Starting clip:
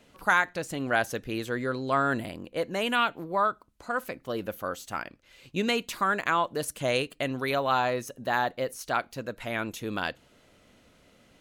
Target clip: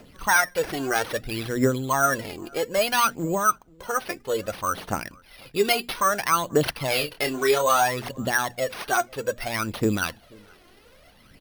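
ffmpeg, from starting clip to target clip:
ffmpeg -i in.wav -filter_complex "[0:a]bandreject=frequency=60:width_type=h:width=6,bandreject=frequency=120:width_type=h:width=6,bandreject=frequency=180:width_type=h:width=6,bandreject=frequency=240:width_type=h:width=6,asplit=2[link_01][link_02];[link_02]alimiter=limit=-22dB:level=0:latency=1:release=256,volume=-2dB[link_03];[link_01][link_03]amix=inputs=2:normalize=0,aphaser=in_gain=1:out_gain=1:delay=2.9:decay=0.72:speed=0.61:type=triangular,acrusher=samples=6:mix=1:aa=0.000001,asettb=1/sr,asplit=3[link_04][link_05][link_06];[link_04]atrim=end=6.884[link_07];[link_05]atrim=start=6.88:end=7.82,asetpts=PTS-STARTPTS,afade=type=in:duration=0.004:curve=qsin,afade=type=out:start_time=0.936:duration=0.004:curve=qsin,asplit=2[link_08][link_09];[link_09]adelay=27,volume=-6dB[link_10];[link_08][link_10]amix=inputs=2:normalize=0,atrim=end_sample=41454[link_11];[link_06]atrim=start=7.816[link_12];[link_07][link_11]acrossfade=duration=0.004:curve1=hsin:curve2=qsin[link_13];[link_13][link_12]acrossfade=duration=0.004:curve1=qsin:curve2=hsin,asplit=2[link_14][link_15];[link_15]adelay=484,volume=-27dB,highshelf=frequency=4000:gain=-10.9[link_16];[link_14][link_16]amix=inputs=2:normalize=0,volume=-1.5dB" out.wav

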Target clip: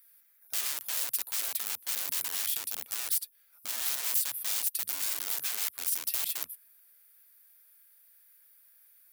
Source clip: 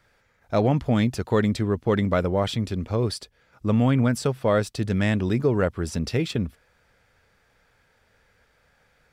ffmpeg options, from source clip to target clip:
ffmpeg -i in.wav -af "aexciter=amount=8.3:drive=8.1:freq=9900,aeval=exprs='(mod(13.3*val(0)+1,2)-1)/13.3':channel_layout=same,aderivative,volume=-1dB" out.wav

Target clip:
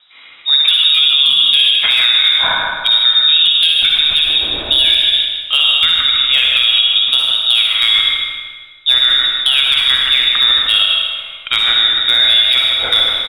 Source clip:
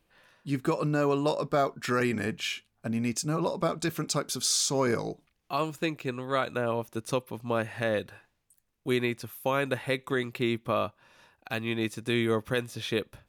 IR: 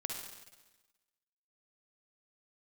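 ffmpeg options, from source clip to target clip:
-filter_complex "[0:a]bandreject=frequency=1200:width=13,lowpass=frequency=3300:width_type=q:width=0.5098,lowpass=frequency=3300:width_type=q:width=0.6013,lowpass=frequency=3300:width_type=q:width=0.9,lowpass=frequency=3300:width_type=q:width=2.563,afreqshift=-3900,highshelf=frequency=2100:gain=9,acompressor=threshold=-25dB:ratio=2,volume=16.5dB,asoftclip=hard,volume=-16.5dB,asplit=2[link_01][link_02];[link_02]adelay=156,lowpass=frequency=2700:poles=1,volume=-4dB,asplit=2[link_03][link_04];[link_04]adelay=156,lowpass=frequency=2700:poles=1,volume=0.47,asplit=2[link_05][link_06];[link_06]adelay=156,lowpass=frequency=2700:poles=1,volume=0.47,asplit=2[link_07][link_08];[link_08]adelay=156,lowpass=frequency=2700:poles=1,volume=0.47,asplit=2[link_09][link_10];[link_10]adelay=156,lowpass=frequency=2700:poles=1,volume=0.47,asplit=2[link_11][link_12];[link_12]adelay=156,lowpass=frequency=2700:poles=1,volume=0.47[link_13];[link_01][link_03][link_05][link_07][link_09][link_11][link_13]amix=inputs=7:normalize=0[link_14];[1:a]atrim=start_sample=2205[link_15];[link_14][link_15]afir=irnorm=-1:irlink=0,asubboost=boost=3:cutoff=120,alimiter=level_in=17.5dB:limit=-1dB:release=50:level=0:latency=1,volume=-1.5dB"

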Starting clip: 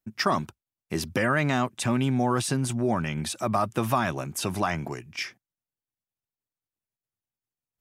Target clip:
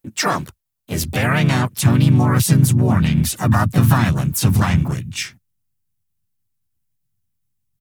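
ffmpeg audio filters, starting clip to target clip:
ffmpeg -i in.wav -filter_complex "[0:a]asplit=4[link_01][link_02][link_03][link_04];[link_02]asetrate=35002,aresample=44100,atempo=1.25992,volume=-11dB[link_05];[link_03]asetrate=52444,aresample=44100,atempo=0.840896,volume=-3dB[link_06];[link_04]asetrate=66075,aresample=44100,atempo=0.66742,volume=-6dB[link_07];[link_01][link_05][link_06][link_07]amix=inputs=4:normalize=0,crystalizer=i=1:c=0,asubboost=boost=11.5:cutoff=140,volume=2.5dB" out.wav

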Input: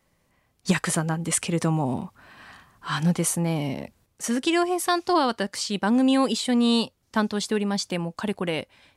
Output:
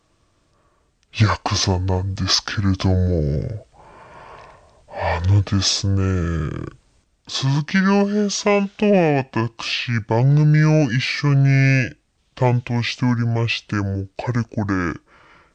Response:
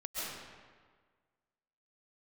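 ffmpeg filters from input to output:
-af "acontrast=46,asetrate=25442,aresample=44100"

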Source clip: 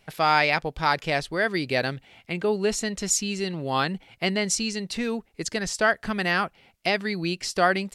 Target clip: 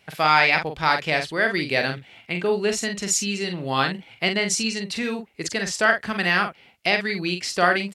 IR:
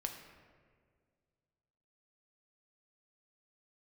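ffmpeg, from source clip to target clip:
-filter_complex "[0:a]highpass=74,equalizer=frequency=2400:width_type=o:width=1.7:gain=4.5,asplit=2[link_01][link_02];[link_02]adelay=45,volume=-6.5dB[link_03];[link_01][link_03]amix=inputs=2:normalize=0"

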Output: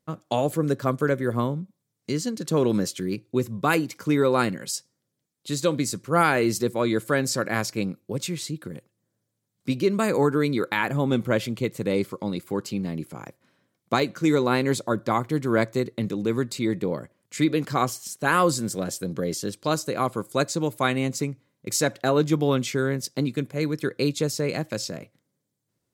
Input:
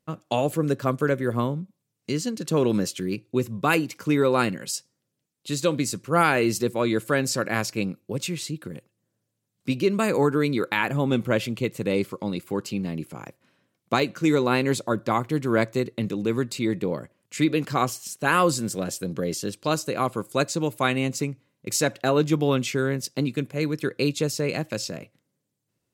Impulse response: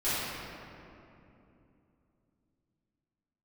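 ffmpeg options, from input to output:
-af "equalizer=frequency=2700:width=5.8:gain=-6.5"

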